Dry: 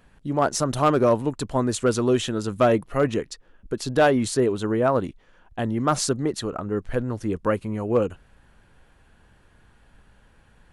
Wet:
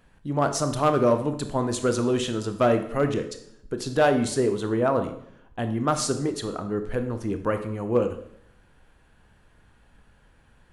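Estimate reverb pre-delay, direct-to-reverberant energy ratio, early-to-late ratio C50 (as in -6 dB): 22 ms, 7.5 dB, 10.0 dB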